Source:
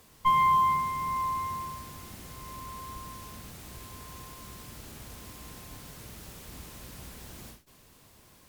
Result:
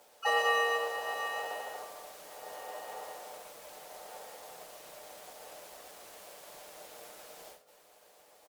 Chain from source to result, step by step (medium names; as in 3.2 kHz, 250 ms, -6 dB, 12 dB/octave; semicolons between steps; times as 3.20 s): comb filter that takes the minimum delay 7.2 ms; harmony voices -7 st -4 dB, +5 st -15 dB, +7 st -9 dB; resonant high-pass 820 Hz, resonance Q 4.7; frequency shift -230 Hz; on a send: reverberation RT60 1.7 s, pre-delay 3 ms, DRR 13 dB; on the sum: trim -5 dB